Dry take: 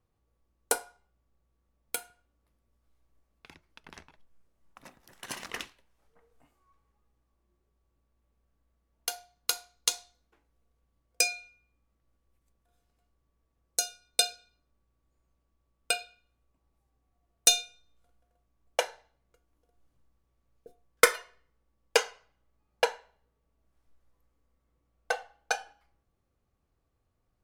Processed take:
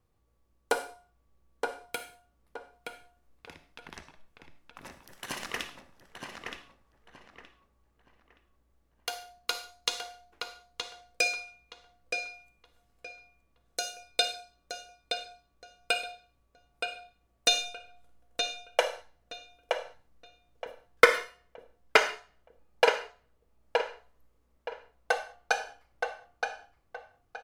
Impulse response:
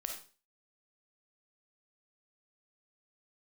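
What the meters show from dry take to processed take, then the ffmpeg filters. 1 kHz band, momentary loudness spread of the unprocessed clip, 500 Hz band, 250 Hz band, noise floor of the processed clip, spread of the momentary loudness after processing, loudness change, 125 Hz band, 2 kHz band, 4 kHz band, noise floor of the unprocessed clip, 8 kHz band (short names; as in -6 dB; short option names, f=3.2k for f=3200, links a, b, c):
+4.5 dB, 17 LU, +4.0 dB, +5.0 dB, -71 dBFS, 23 LU, -1.5 dB, n/a, +4.0 dB, +1.0 dB, -77 dBFS, -8.0 dB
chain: -filter_complex "[0:a]acrossover=split=4400[a][b];[b]acompressor=threshold=-40dB:ratio=4:attack=1:release=60[c];[a][c]amix=inputs=2:normalize=0,asplit=2[d][e];[e]adelay=921,lowpass=f=3.4k:p=1,volume=-4dB,asplit=2[f][g];[g]adelay=921,lowpass=f=3.4k:p=1,volume=0.29,asplit=2[h][i];[i]adelay=921,lowpass=f=3.4k:p=1,volume=0.29,asplit=2[j][k];[k]adelay=921,lowpass=f=3.4k:p=1,volume=0.29[l];[d][f][h][j][l]amix=inputs=5:normalize=0,asplit=2[m][n];[1:a]atrim=start_sample=2205,afade=t=out:st=0.24:d=0.01,atrim=end_sample=11025,asetrate=39690,aresample=44100[o];[n][o]afir=irnorm=-1:irlink=0,volume=-3dB[p];[m][p]amix=inputs=2:normalize=0,volume=-1dB"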